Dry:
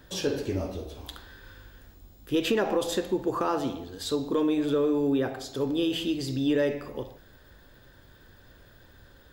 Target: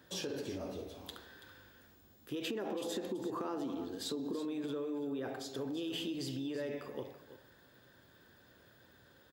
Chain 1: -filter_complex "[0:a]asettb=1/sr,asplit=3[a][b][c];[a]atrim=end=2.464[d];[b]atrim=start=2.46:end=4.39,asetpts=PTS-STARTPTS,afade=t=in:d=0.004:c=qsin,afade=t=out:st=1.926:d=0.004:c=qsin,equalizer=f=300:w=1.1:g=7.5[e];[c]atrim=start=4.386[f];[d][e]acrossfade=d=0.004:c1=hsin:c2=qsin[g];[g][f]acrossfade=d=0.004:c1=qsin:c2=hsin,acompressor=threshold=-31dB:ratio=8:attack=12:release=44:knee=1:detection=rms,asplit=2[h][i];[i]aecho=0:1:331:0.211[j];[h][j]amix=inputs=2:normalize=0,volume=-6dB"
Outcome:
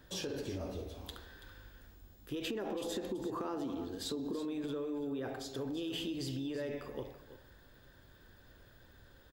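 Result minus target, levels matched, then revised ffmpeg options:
125 Hz band +3.0 dB
-filter_complex "[0:a]asettb=1/sr,asplit=3[a][b][c];[a]atrim=end=2.464[d];[b]atrim=start=2.46:end=4.39,asetpts=PTS-STARTPTS,afade=t=in:d=0.004:c=qsin,afade=t=out:st=1.926:d=0.004:c=qsin,equalizer=f=300:w=1.1:g=7.5[e];[c]atrim=start=4.386[f];[d][e]acrossfade=d=0.004:c1=hsin:c2=qsin[g];[g][f]acrossfade=d=0.004:c1=qsin:c2=hsin,acompressor=threshold=-31dB:ratio=8:attack=12:release=44:knee=1:detection=rms,highpass=130,asplit=2[h][i];[i]aecho=0:1:331:0.211[j];[h][j]amix=inputs=2:normalize=0,volume=-6dB"

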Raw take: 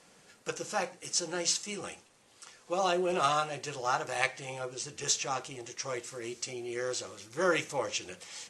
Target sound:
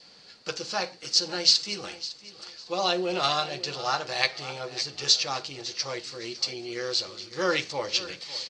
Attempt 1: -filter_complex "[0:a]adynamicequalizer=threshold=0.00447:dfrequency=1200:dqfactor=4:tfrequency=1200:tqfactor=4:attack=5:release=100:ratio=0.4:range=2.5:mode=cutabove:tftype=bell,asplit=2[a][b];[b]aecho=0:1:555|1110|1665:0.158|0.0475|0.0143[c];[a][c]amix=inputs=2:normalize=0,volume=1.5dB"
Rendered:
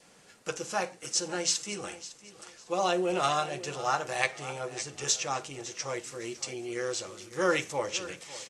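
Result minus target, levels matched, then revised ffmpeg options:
4000 Hz band -6.5 dB
-filter_complex "[0:a]adynamicequalizer=threshold=0.00447:dfrequency=1200:dqfactor=4:tfrequency=1200:tqfactor=4:attack=5:release=100:ratio=0.4:range=2.5:mode=cutabove:tftype=bell,lowpass=f=4.5k:t=q:w=8.5,asplit=2[a][b];[b]aecho=0:1:555|1110|1665:0.158|0.0475|0.0143[c];[a][c]amix=inputs=2:normalize=0,volume=1.5dB"

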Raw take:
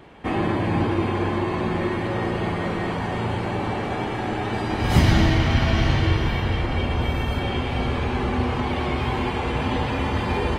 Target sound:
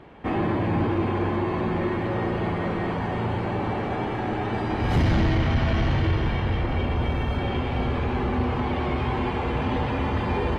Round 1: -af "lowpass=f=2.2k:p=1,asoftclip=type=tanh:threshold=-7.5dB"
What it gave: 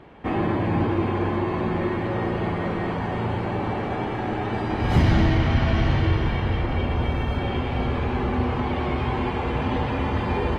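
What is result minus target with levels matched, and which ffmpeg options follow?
soft clip: distortion -10 dB
-af "lowpass=f=2.2k:p=1,asoftclip=type=tanh:threshold=-15dB"

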